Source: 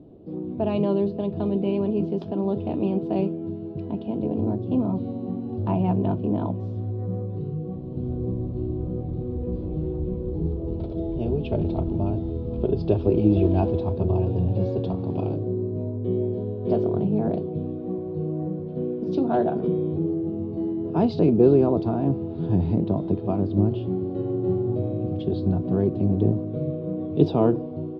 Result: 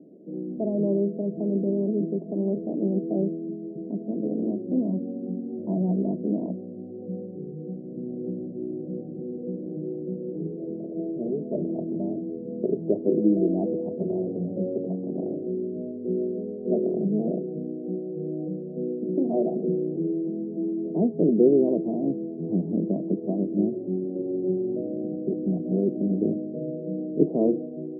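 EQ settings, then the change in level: elliptic band-pass 180–620 Hz, stop band 60 dB; air absorption 420 m; 0.0 dB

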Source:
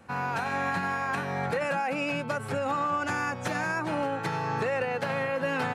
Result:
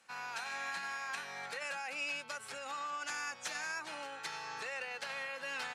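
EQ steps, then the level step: band-pass 5900 Hz, Q 0.81; +1.0 dB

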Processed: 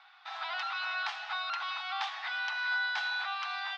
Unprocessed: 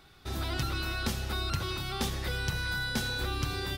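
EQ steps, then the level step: steep high-pass 720 Hz 72 dB/oct; LPF 3900 Hz 12 dB/oct; air absorption 160 m; +5.0 dB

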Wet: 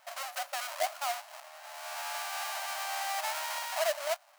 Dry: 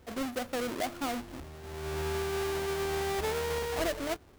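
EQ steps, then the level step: notch 3500 Hz, Q 18; dynamic EQ 1600 Hz, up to -3 dB, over -48 dBFS, Q 0.71; brick-wall FIR high-pass 560 Hz; +4.0 dB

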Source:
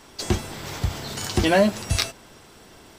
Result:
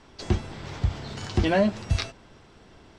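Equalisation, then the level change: air absorption 110 m; low shelf 160 Hz +6.5 dB; -4.5 dB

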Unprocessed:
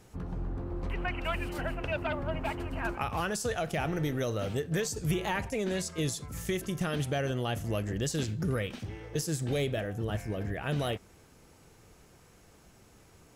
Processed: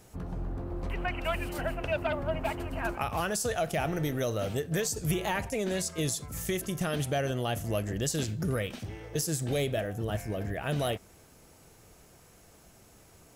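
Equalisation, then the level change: bell 650 Hz +4.5 dB 0.38 oct; high shelf 8000 Hz +9 dB; 0.0 dB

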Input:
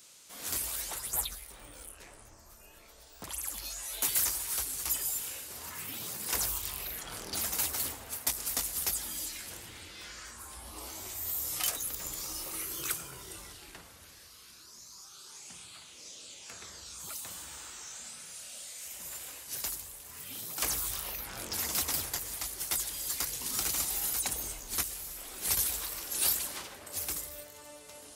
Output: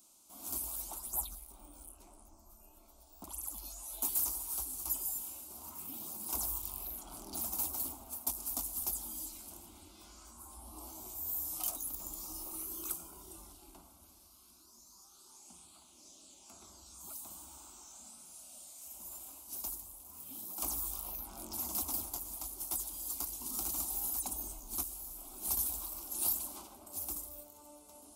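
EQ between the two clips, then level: bell 3700 Hz -11 dB 2.8 oct; fixed phaser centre 480 Hz, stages 6; 0.0 dB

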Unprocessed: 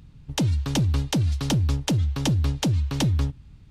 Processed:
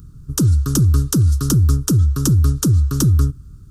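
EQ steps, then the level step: EQ curve 110 Hz 0 dB, 240 Hz -4 dB, 400 Hz -1 dB, 730 Hz -29 dB, 1300 Hz +3 dB, 2100 Hz -24 dB, 3800 Hz -13 dB, 5600 Hz -1 dB, 12000 Hz +9 dB; +9.0 dB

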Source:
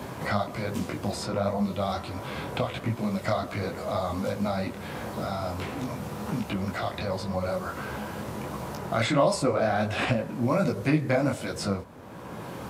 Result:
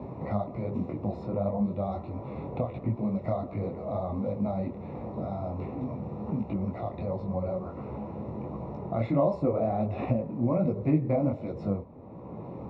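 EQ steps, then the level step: running mean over 28 samples; air absorption 140 m; 0.0 dB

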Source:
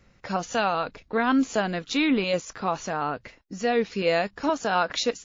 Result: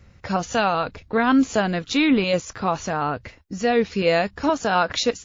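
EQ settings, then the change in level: bell 83 Hz +12 dB 1.2 oct; +3.5 dB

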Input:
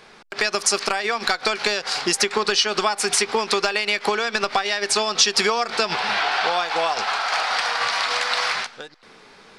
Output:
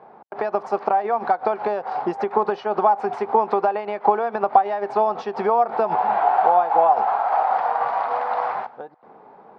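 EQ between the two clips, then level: HPF 110 Hz; synth low-pass 810 Hz, resonance Q 3.5; -1.0 dB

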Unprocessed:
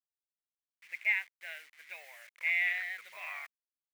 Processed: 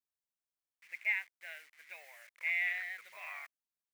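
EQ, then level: bell 3300 Hz -3 dB 0.77 oct; -2.5 dB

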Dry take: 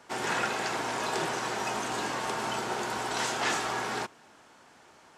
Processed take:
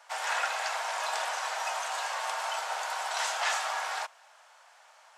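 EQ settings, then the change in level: steep high-pass 580 Hz 48 dB/oct; 0.0 dB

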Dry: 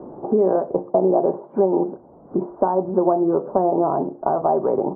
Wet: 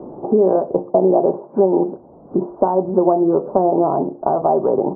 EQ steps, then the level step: LPF 1100 Hz 12 dB/oct; +3.5 dB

